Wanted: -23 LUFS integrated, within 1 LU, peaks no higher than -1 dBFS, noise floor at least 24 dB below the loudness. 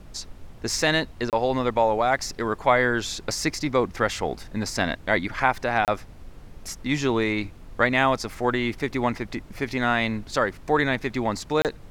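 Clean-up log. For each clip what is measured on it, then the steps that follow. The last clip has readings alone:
dropouts 3; longest dropout 28 ms; noise floor -45 dBFS; noise floor target -49 dBFS; loudness -24.5 LUFS; peak level -5.0 dBFS; loudness target -23.0 LUFS
-> interpolate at 1.30/5.85/11.62 s, 28 ms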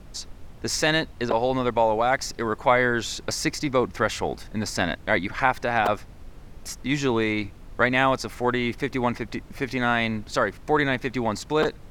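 dropouts 0; noise floor -44 dBFS; noise floor target -49 dBFS
-> noise print and reduce 6 dB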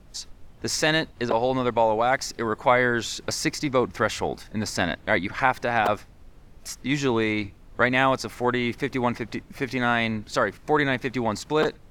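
noise floor -49 dBFS; loudness -24.5 LUFS; peak level -5.0 dBFS; loudness target -23.0 LUFS
-> trim +1.5 dB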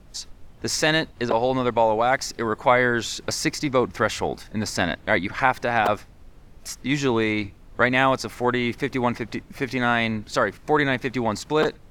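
loudness -23.0 LUFS; peak level -3.5 dBFS; noise floor -48 dBFS

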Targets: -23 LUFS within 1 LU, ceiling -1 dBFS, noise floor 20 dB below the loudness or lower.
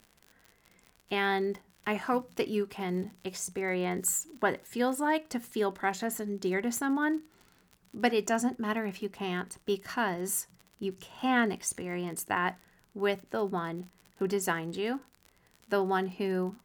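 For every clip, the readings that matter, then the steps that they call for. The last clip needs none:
tick rate 51 per s; loudness -32.0 LUFS; peak level -12.0 dBFS; loudness target -23.0 LUFS
-> de-click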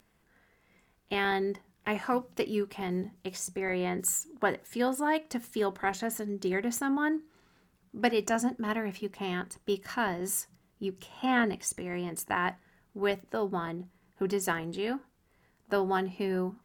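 tick rate 1.2 per s; loudness -32.0 LUFS; peak level -12.0 dBFS; loudness target -23.0 LUFS
-> trim +9 dB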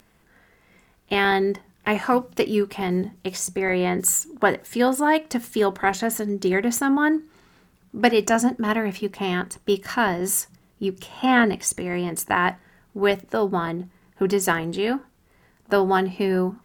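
loudness -23.0 LUFS; peak level -3.0 dBFS; noise floor -60 dBFS

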